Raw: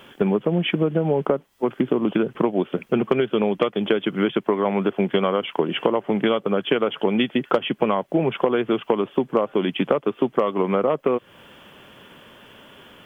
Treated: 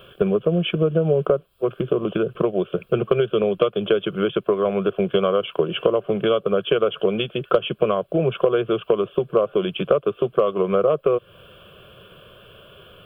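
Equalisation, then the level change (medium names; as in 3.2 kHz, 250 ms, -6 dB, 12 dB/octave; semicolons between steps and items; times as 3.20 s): bass shelf 440 Hz +8.5 dB; static phaser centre 1.3 kHz, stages 8; 0.0 dB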